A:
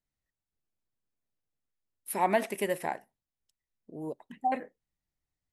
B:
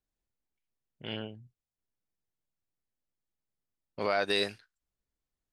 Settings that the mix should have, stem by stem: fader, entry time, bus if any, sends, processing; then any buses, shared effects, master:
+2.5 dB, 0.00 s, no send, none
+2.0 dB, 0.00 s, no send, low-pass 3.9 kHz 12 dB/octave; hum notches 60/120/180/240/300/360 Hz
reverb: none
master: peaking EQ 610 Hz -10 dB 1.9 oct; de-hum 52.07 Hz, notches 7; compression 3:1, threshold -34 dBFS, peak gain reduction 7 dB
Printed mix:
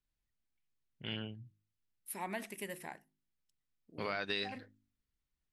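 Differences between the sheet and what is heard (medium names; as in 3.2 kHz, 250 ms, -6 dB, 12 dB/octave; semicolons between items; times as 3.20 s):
stem A +2.5 dB -> -6.5 dB; stem B: missing hum notches 60/120/180/240/300/360 Hz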